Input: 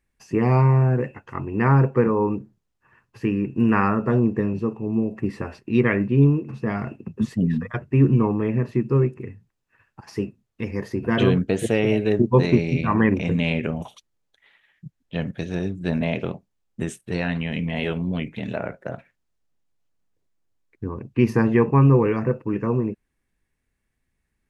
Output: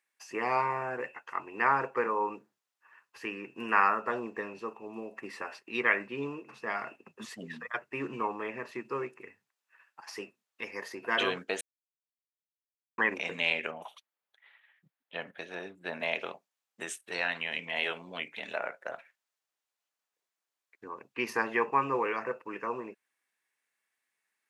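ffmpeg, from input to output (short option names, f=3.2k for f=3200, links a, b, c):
-filter_complex "[0:a]asettb=1/sr,asplit=3[a][b][c];[a]atrim=end=13.714[d];[b]atrim=start=13.71:end=16,asetpts=PTS-STARTPTS,afade=t=in:d=0.004:c=qsin,afade=t=out:st=2.286:d=0.004:c=qsin,equalizer=f=6.7k:w=0.7:g=-12.5[e];[c]atrim=start=15.996[f];[d][e]acrossfade=d=0.004:c1=hsin:c2=qsin[g];[g][f]acrossfade=d=0.004:c1=qsin:c2=hsin,asplit=3[h][i][j];[h]atrim=end=11.61,asetpts=PTS-STARTPTS,afade=t=out:st=11.606:d=0.004:c=hsin[k];[i]atrim=start=11.61:end=12.98,asetpts=PTS-STARTPTS,volume=0[l];[j]atrim=start=12.98,asetpts=PTS-STARTPTS,afade=t=in:d=0.004:c=hsin[m];[k][l][m]concat=n=3:v=0:a=1,highpass=840"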